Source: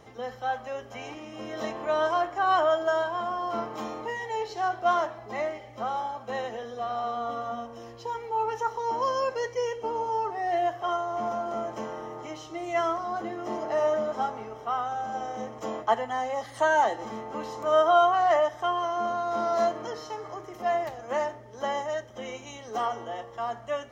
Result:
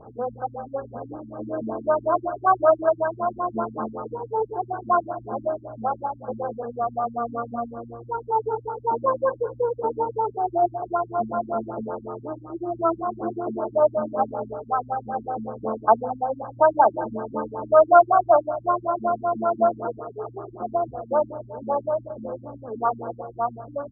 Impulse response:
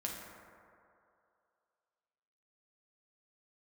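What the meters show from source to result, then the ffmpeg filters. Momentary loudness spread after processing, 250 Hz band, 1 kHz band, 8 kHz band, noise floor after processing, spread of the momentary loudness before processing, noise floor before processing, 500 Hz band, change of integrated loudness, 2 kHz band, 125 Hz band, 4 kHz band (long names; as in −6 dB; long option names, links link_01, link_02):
14 LU, +6.5 dB, +4.0 dB, can't be measured, −46 dBFS, 14 LU, −46 dBFS, +5.0 dB, +4.0 dB, −4.0 dB, +7.5 dB, below −40 dB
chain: -filter_complex "[0:a]bandreject=frequency=51.52:width_type=h:width=4,bandreject=frequency=103.04:width_type=h:width=4,bandreject=frequency=154.56:width_type=h:width=4,bandreject=frequency=206.08:width_type=h:width=4,bandreject=frequency=257.6:width_type=h:width=4,bandreject=frequency=309.12:width_type=h:width=4,bandreject=frequency=360.64:width_type=h:width=4,bandreject=frequency=412.16:width_type=h:width=4,bandreject=frequency=463.68:width_type=h:width=4,bandreject=frequency=515.2:width_type=h:width=4,asplit=2[link_01][link_02];[1:a]atrim=start_sample=2205,adelay=30[link_03];[link_02][link_03]afir=irnorm=-1:irlink=0,volume=-14.5dB[link_04];[link_01][link_04]amix=inputs=2:normalize=0,afftfilt=real='re*lt(b*sr/1024,280*pow(1700/280,0.5+0.5*sin(2*PI*5.3*pts/sr)))':imag='im*lt(b*sr/1024,280*pow(1700/280,0.5+0.5*sin(2*PI*5.3*pts/sr)))':win_size=1024:overlap=0.75,volume=7.5dB"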